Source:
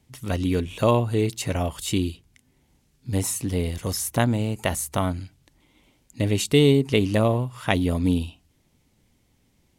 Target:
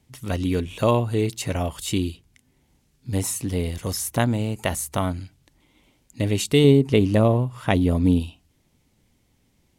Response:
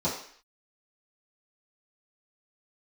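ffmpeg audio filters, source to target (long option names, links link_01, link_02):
-filter_complex "[0:a]asettb=1/sr,asplit=3[link_01][link_02][link_03];[link_01]atrim=end=6.644[link_04];[link_02]atrim=start=6.64:end=8.2,asetpts=PTS-STARTPTS,afade=type=in:duration=0.004:curve=qsin,afade=type=out:start_time=1.556:duration=0.004:curve=qsin,tiltshelf=frequency=1100:gain=3.5[link_05];[link_03]atrim=start=8.196[link_06];[link_04][link_05]acrossfade=duration=0.004:curve1=hsin:curve2=qsin[link_07];[link_07][link_06]acrossfade=duration=0.004:curve1=qsin:curve2=hsin"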